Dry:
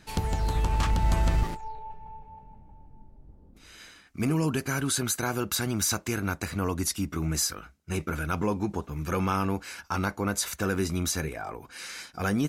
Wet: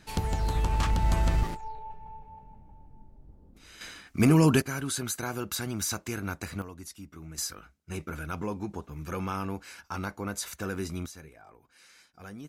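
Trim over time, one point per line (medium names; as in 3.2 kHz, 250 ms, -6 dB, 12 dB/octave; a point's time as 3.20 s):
-1 dB
from 3.81 s +6 dB
from 4.62 s -4.5 dB
from 6.62 s -15 dB
from 7.38 s -6 dB
from 11.06 s -17 dB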